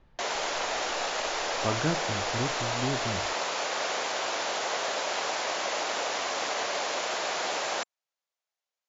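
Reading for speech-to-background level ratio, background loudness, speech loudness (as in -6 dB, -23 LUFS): -4.5 dB, -30.0 LUFS, -34.5 LUFS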